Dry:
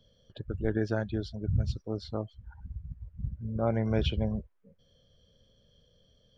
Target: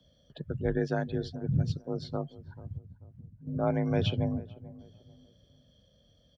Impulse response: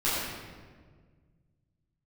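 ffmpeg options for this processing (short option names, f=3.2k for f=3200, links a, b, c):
-filter_complex "[0:a]asettb=1/sr,asplit=3[a][b][c];[a]atrim=end=2.774[d];[b]atrim=start=2.77:end=3.47,asetpts=PTS-STARTPTS,afade=t=in:d=0.004:c=qsin,afade=t=out:st=0.696:d=0.004:c=qsin,acompressor=threshold=-47dB:ratio=6[e];[c]atrim=start=3.466[f];[d][e]acrossfade=d=0.004:c1=hsin:c2=qsin[g];[g][f]acrossfade=d=0.004:c1=qsin:c2=hsin,afreqshift=37,asplit=2[h][i];[i]adelay=439,lowpass=f=1k:p=1,volume=-17.5dB,asplit=2[j][k];[k]adelay=439,lowpass=f=1k:p=1,volume=0.35,asplit=2[l][m];[m]adelay=439,lowpass=f=1k:p=1,volume=0.35[n];[j][l][n]amix=inputs=3:normalize=0[o];[h][o]amix=inputs=2:normalize=0"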